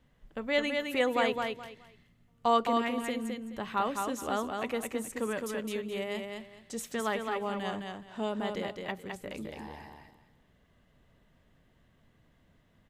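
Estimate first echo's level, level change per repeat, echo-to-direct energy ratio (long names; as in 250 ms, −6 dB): −4.5 dB, −13.0 dB, −4.5 dB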